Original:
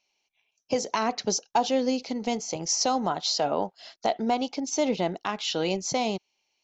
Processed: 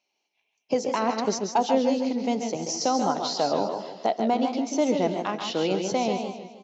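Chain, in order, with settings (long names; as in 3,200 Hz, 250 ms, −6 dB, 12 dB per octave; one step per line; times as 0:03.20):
high-pass filter 210 Hz 12 dB per octave
spectral tilt −2 dB per octave
on a send: single-tap delay 136 ms −7.5 dB
on the sum: feedback echo with a swinging delay time 155 ms, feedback 43%, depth 125 cents, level −9 dB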